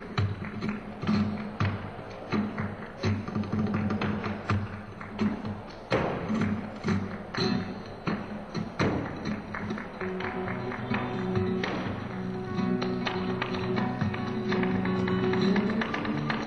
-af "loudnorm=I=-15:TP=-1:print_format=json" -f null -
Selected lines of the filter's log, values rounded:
"input_i" : "-30.2",
"input_tp" : "-13.0",
"input_lra" : "3.8",
"input_thresh" : "-40.3",